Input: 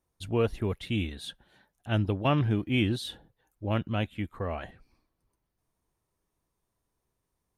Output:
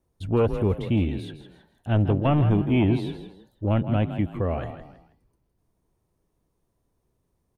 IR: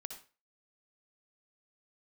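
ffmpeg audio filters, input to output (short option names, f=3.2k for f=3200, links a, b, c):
-filter_complex "[0:a]acrossover=split=680|2900[a][b][c];[a]aeval=exprs='0.158*sin(PI/2*1.78*val(0)/0.158)':c=same[d];[c]acompressor=threshold=-52dB:ratio=6[e];[d][b][e]amix=inputs=3:normalize=0,asplit=4[f][g][h][i];[g]adelay=161,afreqshift=31,volume=-10.5dB[j];[h]adelay=322,afreqshift=62,volume=-20.4dB[k];[i]adelay=483,afreqshift=93,volume=-30.3dB[l];[f][j][k][l]amix=inputs=4:normalize=0"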